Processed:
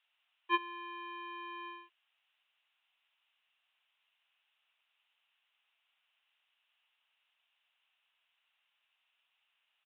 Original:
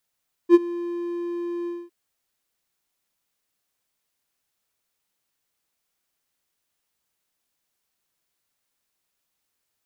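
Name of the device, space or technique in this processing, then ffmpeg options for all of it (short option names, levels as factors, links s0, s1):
musical greeting card: -af "aresample=8000,aresample=44100,highpass=f=750:w=0.5412,highpass=f=750:w=1.3066,equalizer=f=2800:t=o:w=0.47:g=11,volume=1.19"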